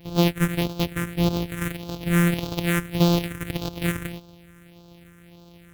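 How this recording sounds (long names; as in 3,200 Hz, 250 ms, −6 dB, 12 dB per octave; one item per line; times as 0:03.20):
a buzz of ramps at a fixed pitch in blocks of 256 samples
phaser sweep stages 4, 1.7 Hz, lowest notch 730–1,900 Hz
AAC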